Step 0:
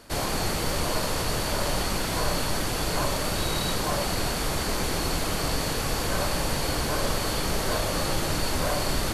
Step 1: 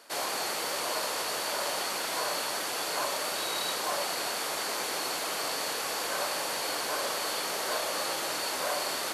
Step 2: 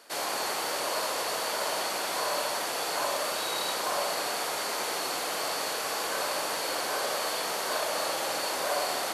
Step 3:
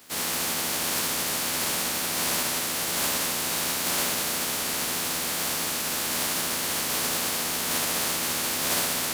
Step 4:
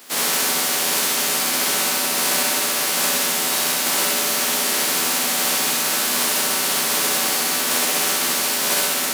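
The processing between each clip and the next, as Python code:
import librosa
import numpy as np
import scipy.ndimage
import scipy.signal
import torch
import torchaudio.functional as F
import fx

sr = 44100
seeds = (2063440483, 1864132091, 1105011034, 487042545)

y1 = scipy.signal.sosfilt(scipy.signal.butter(2, 520.0, 'highpass', fs=sr, output='sos'), x)
y1 = F.gain(torch.from_numpy(y1), -2.0).numpy()
y2 = fx.echo_banded(y1, sr, ms=67, feedback_pct=74, hz=730.0, wet_db=-3.5)
y3 = fx.spec_flatten(y2, sr, power=0.2)
y3 = fx.peak_eq(y3, sr, hz=220.0, db=7.5, octaves=0.91)
y3 = fx.doubler(y3, sr, ms=12.0, db=-2.5)
y3 = F.gain(torch.from_numpy(y3), 1.5).numpy()
y4 = scipy.signal.sosfilt(scipy.signal.bessel(4, 230.0, 'highpass', norm='mag', fs=sr, output='sos'), y3)
y4 = fx.rider(y4, sr, range_db=10, speed_s=0.5)
y4 = fx.room_flutter(y4, sr, wall_m=10.6, rt60_s=0.64)
y4 = F.gain(torch.from_numpy(y4), 6.0).numpy()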